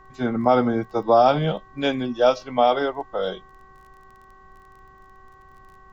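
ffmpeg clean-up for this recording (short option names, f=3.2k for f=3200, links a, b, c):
-af "adeclick=t=4,bandreject=f=382.8:t=h:w=4,bandreject=f=765.6:t=h:w=4,bandreject=f=1.1484k:t=h:w=4,bandreject=f=1.5312k:t=h:w=4,bandreject=f=1.914k:t=h:w=4,bandreject=f=1.1k:w=30,agate=range=-21dB:threshold=-42dB"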